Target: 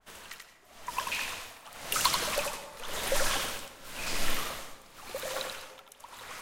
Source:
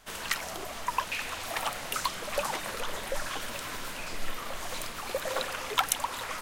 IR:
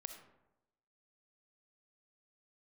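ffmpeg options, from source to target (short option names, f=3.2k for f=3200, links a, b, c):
-filter_complex "[0:a]dynaudnorm=f=270:g=9:m=12dB,tremolo=f=0.94:d=0.95,asplit=2[a][b];[1:a]atrim=start_sample=2205,asetrate=29988,aresample=44100,adelay=86[c];[b][c]afir=irnorm=-1:irlink=0,volume=-2.5dB[d];[a][d]amix=inputs=2:normalize=0,adynamicequalizer=threshold=0.0112:dfrequency=2400:dqfactor=0.7:tfrequency=2400:tqfactor=0.7:attack=5:release=100:ratio=0.375:range=2.5:mode=boostabove:tftype=highshelf,volume=-8dB"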